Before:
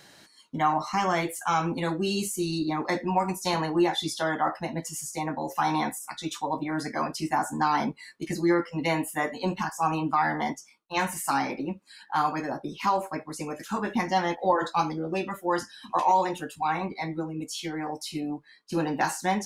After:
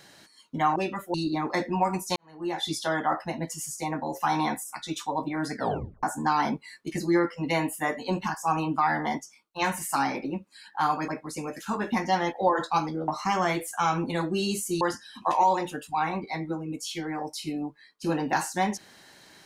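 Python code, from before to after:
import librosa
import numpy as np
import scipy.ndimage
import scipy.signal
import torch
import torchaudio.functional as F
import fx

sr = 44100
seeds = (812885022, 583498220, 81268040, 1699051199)

y = fx.edit(x, sr, fx.swap(start_s=0.76, length_s=1.73, other_s=15.11, other_length_s=0.38),
    fx.fade_in_span(start_s=3.51, length_s=0.51, curve='qua'),
    fx.tape_stop(start_s=6.9, length_s=0.48),
    fx.cut(start_s=12.43, length_s=0.68), tone=tone)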